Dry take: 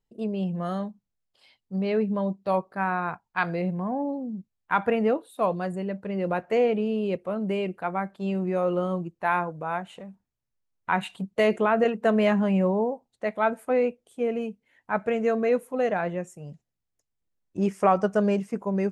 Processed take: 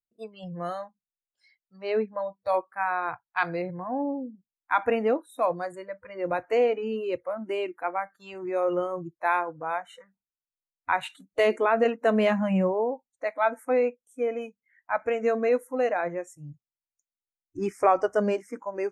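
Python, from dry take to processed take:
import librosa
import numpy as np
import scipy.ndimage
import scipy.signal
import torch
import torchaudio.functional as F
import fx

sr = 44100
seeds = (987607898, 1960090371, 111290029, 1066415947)

y = fx.noise_reduce_blind(x, sr, reduce_db=24)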